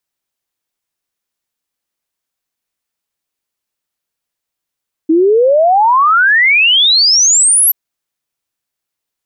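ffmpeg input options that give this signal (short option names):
-f lavfi -i "aevalsrc='0.501*clip(min(t,2.63-t)/0.01,0,1)*sin(2*PI*310*2.63/log(12000/310)*(exp(log(12000/310)*t/2.63)-1))':d=2.63:s=44100"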